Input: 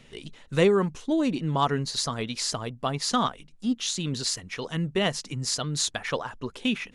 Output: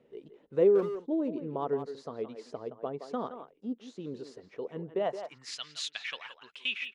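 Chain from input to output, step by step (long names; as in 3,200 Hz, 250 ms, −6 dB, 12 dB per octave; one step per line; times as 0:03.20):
band-pass filter sweep 440 Hz → 2,700 Hz, 0:04.92–0:05.57
far-end echo of a speakerphone 170 ms, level −9 dB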